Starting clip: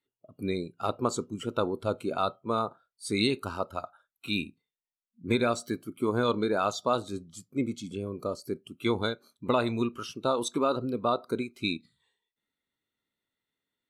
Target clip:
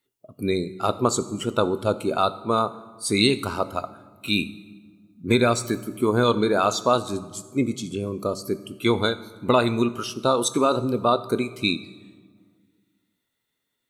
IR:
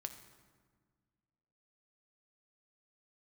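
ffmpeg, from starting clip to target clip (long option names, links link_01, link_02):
-filter_complex "[0:a]asplit=2[link_01][link_02];[1:a]atrim=start_sample=2205,highshelf=frequency=4500:gain=11[link_03];[link_02][link_03]afir=irnorm=-1:irlink=0,volume=0.5dB[link_04];[link_01][link_04]amix=inputs=2:normalize=0,volume=2dB"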